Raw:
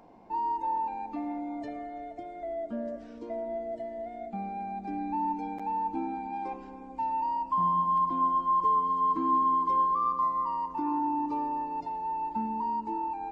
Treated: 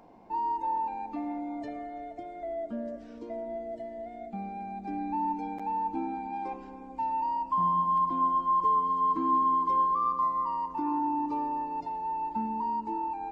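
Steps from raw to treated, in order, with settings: 2.67–4.86 dynamic EQ 1000 Hz, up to -3 dB, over -46 dBFS, Q 0.72

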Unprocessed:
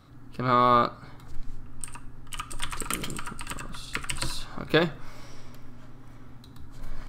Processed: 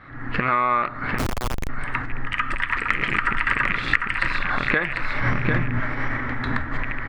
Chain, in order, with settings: rattling part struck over -38 dBFS, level -27 dBFS; recorder AGC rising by 41 dB/s; synth low-pass 1900 Hz, resonance Q 5.4; compressor 10:1, threshold -25 dBFS, peak gain reduction 16 dB; low shelf 470 Hz -6 dB; echo 0.748 s -5 dB; 1.18–1.69 Schmitt trigger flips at -29 dBFS; 5.21–5.8 bell 120 Hz +12.5 dB 2.3 oct; gain +9 dB

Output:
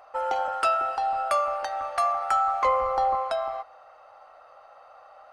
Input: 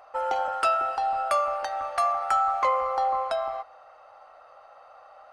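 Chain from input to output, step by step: 2.65–3.15 low shelf 270 Hz +11.5 dB

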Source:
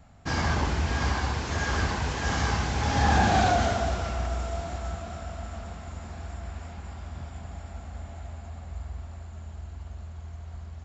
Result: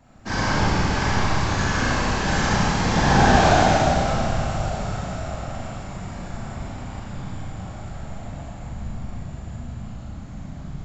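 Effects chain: whisperiser; Schroeder reverb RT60 2 s, combs from 29 ms, DRR -5.5 dB

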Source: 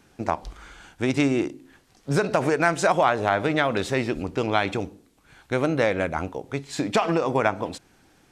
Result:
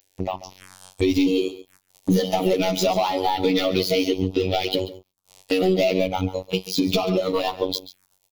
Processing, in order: trilling pitch shifter +3 st, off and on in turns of 0.422 s; robotiser 93.4 Hz; high shelf 3400 Hz +10 dB; sample leveller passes 5; spectral noise reduction 12 dB; compressor 6:1, threshold -14 dBFS, peak gain reduction 9 dB; envelope phaser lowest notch 200 Hz, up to 1600 Hz, full sweep at -25 dBFS; AGC gain up to 8 dB; on a send: echo 0.138 s -15.5 dB; on the sum: gain -6.5 dB

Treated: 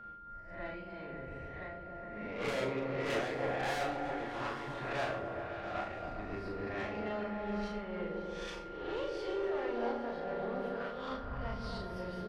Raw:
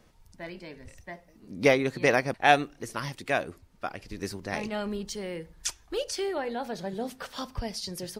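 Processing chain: spectral swells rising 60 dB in 0.40 s; time stretch by phase-locked vocoder 1.5×; air absorption 390 m; tube stage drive 30 dB, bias 0.6; on a send at -6.5 dB: reverb RT60 0.40 s, pre-delay 27 ms; on the sum: dynamic EQ 180 Hz, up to -6 dB, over -49 dBFS, Q 0.75; in parallel at +0.5 dB: compressor, threshold -49 dBFS, peak gain reduction 18 dB; on the sum: whine 1400 Hz -44 dBFS; doubler 38 ms -5 dB; repeats that get brighter 0.136 s, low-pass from 400 Hz, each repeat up 1 oct, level 0 dB; noise-modulated level, depth 50%; gain -3.5 dB

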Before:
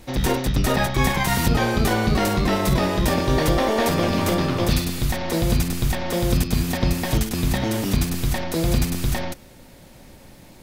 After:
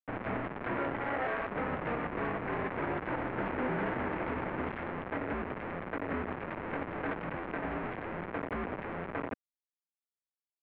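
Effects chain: Schmitt trigger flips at -28.5 dBFS; mistuned SSB -270 Hz 440–2500 Hz; gain -8.5 dB

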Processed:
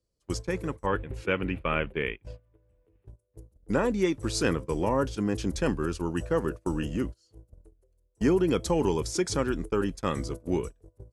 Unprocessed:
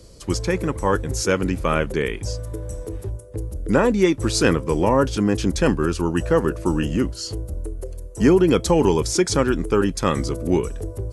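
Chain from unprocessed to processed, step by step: gate -24 dBFS, range -27 dB; 0.86–3.06 resonant high shelf 4000 Hz -14 dB, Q 3; gain -8.5 dB

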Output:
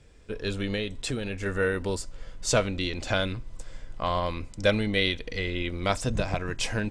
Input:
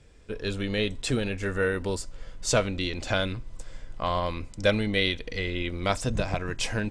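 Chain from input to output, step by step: 0.75–1.46 compressor 2.5:1, threshold -29 dBFS, peak gain reduction 5.5 dB

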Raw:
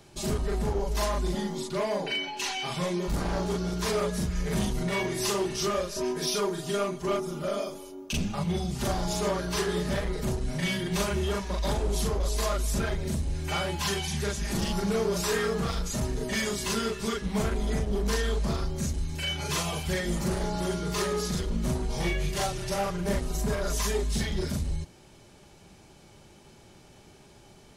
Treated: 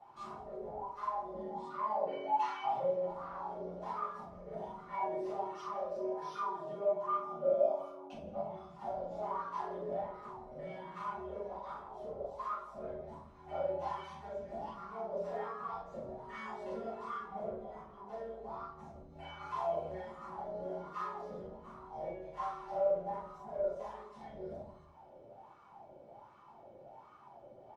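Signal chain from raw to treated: low shelf 410 Hz +7.5 dB; compressor, threshold -30 dBFS, peak gain reduction 12.5 dB; wah 1.3 Hz 530–1200 Hz, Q 11; on a send: feedback echo 0.164 s, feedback 44%, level -19 dB; on the sum: shoebox room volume 400 m³, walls furnished, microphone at 6.8 m; gain +1.5 dB

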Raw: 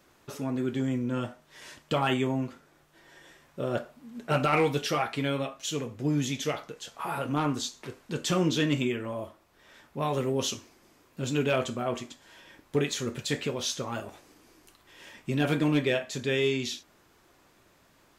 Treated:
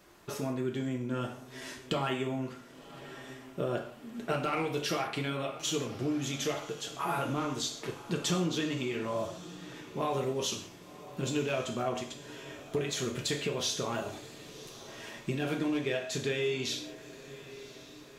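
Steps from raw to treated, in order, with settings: compressor, threshold -31 dBFS, peak gain reduction 11 dB; on a send: diffused feedback echo 1.069 s, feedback 47%, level -15.5 dB; on the sum: non-linear reverb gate 0.19 s falling, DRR 4 dB; gain +1.5 dB

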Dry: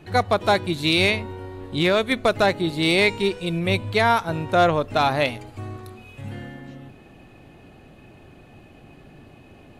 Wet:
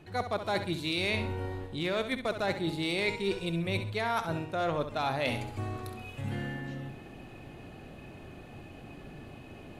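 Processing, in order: reverse; compressor 6:1, threshold -29 dBFS, peak gain reduction 15 dB; reverse; flutter echo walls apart 11.3 m, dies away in 0.41 s

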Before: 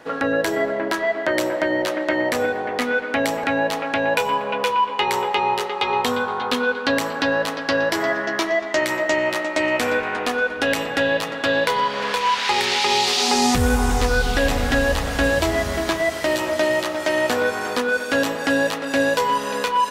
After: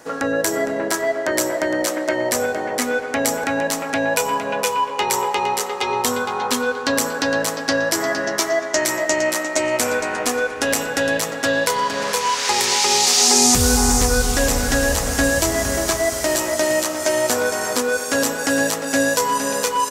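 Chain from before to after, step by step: resonant high shelf 4800 Hz +10.5 dB, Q 1.5; on a send: echo 0.461 s -8.5 dB

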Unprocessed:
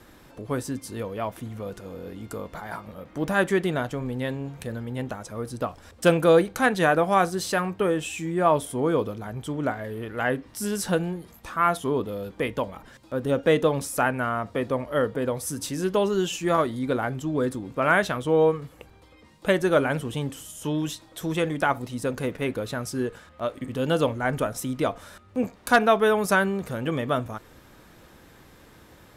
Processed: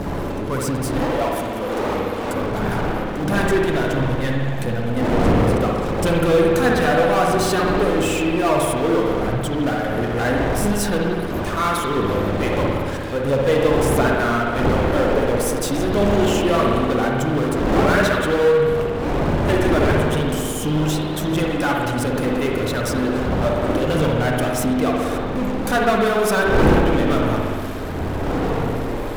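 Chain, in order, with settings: wind noise 470 Hz -28 dBFS; 1.02–2.34 tone controls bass -12 dB, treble +1 dB; power-law curve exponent 0.5; phaser 1.5 Hz, delay 4.1 ms, feedback 38%; spring tank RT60 2.1 s, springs 59 ms, chirp 35 ms, DRR -1 dB; gain -9 dB

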